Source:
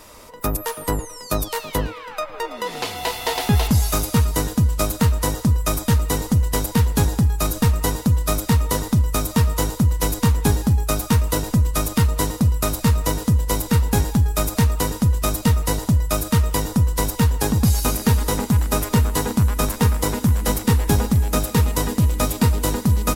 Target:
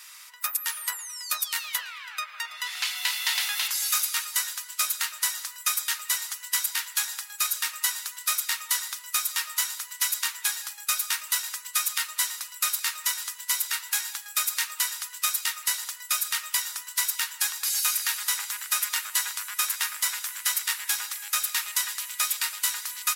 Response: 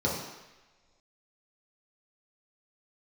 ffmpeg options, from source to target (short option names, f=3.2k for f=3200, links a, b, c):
-af "highpass=f=1.5k:w=0.5412,highpass=f=1.5k:w=1.3066,asoftclip=type=hard:threshold=-13.5dB,volume=1.5dB"